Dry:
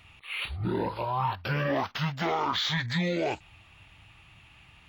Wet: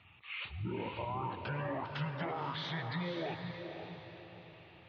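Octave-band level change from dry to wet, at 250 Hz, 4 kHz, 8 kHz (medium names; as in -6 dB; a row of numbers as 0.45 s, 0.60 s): -8.5 dB, -11.5 dB, under -20 dB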